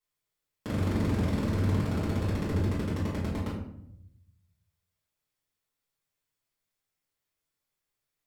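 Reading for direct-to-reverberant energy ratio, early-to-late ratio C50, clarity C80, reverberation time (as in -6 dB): -10.5 dB, 2.5 dB, 6.0 dB, 0.75 s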